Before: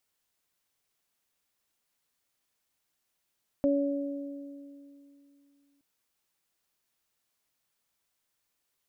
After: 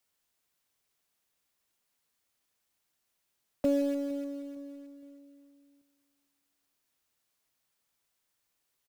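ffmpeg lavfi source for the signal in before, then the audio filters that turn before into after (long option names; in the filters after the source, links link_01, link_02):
-f lavfi -i "aevalsrc='0.0668*pow(10,-3*t/2.86)*sin(2*PI*282*t)+0.0631*pow(10,-3*t/1.96)*sin(2*PI*564*t)':duration=2.17:sample_rate=44100"
-filter_complex "[0:a]acrossover=split=140|300|450[link_01][link_02][link_03][link_04];[link_03]acrusher=bits=2:mode=log:mix=0:aa=0.000001[link_05];[link_01][link_02][link_05][link_04]amix=inputs=4:normalize=0,aecho=1:1:461|922|1383:0.0631|0.0271|0.0117"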